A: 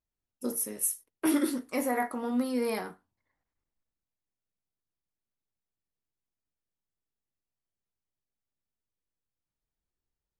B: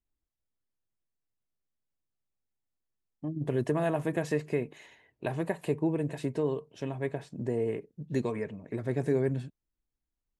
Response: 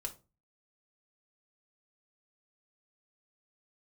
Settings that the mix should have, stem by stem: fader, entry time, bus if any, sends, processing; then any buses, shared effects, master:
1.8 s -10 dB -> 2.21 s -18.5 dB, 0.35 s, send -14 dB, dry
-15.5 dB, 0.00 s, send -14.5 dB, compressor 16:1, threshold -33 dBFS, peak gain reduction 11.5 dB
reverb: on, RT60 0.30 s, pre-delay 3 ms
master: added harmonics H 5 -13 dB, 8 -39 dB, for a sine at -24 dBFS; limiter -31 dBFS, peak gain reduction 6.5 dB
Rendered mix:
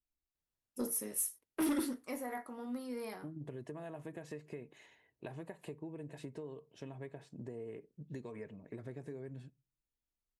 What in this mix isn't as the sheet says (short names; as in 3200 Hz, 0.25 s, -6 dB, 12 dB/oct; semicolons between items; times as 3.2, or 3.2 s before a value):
stem A: send off; master: missing limiter -31 dBFS, peak gain reduction 6.5 dB